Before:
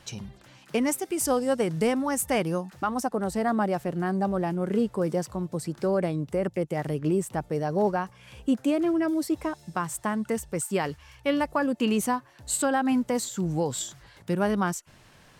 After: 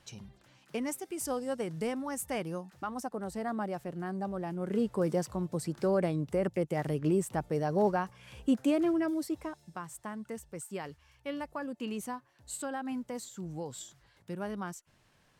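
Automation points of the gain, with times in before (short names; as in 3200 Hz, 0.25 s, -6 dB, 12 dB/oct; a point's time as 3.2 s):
4.43 s -9.5 dB
4.97 s -3 dB
8.82 s -3 dB
9.82 s -12.5 dB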